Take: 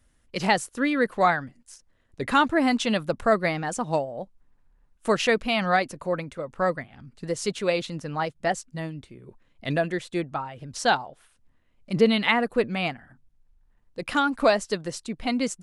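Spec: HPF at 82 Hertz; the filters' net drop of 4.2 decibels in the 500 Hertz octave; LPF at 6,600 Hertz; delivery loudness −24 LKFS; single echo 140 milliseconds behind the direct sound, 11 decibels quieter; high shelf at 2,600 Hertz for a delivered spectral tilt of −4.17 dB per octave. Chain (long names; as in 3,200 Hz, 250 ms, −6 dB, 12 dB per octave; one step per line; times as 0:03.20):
high-pass filter 82 Hz
low-pass filter 6,600 Hz
parametric band 500 Hz −5.5 dB
high-shelf EQ 2,600 Hz +3.5 dB
single-tap delay 140 ms −11 dB
level +2 dB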